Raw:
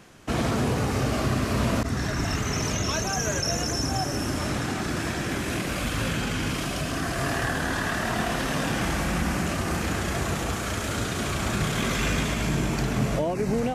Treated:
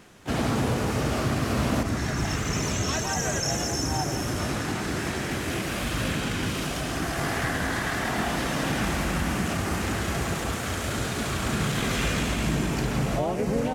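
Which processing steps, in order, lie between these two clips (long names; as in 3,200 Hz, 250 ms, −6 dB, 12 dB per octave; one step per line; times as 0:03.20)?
pitch-shifted copies added +3 semitones −5 dB
single-tap delay 166 ms −10.5 dB
level −2 dB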